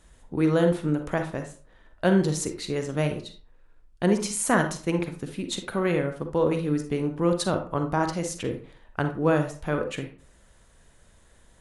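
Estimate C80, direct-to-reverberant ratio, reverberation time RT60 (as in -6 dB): 14.5 dB, 6.0 dB, 0.40 s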